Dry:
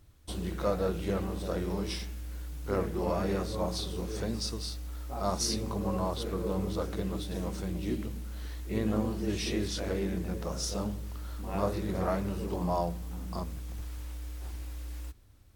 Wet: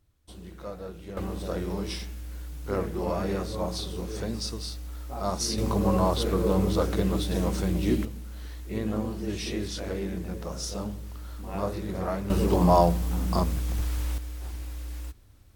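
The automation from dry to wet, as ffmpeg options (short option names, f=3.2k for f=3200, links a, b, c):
-af "asetnsamples=n=441:p=0,asendcmd='1.17 volume volume 1.5dB;5.58 volume volume 8dB;8.05 volume volume 0dB;12.3 volume volume 11dB;14.18 volume volume 3.5dB',volume=-9dB"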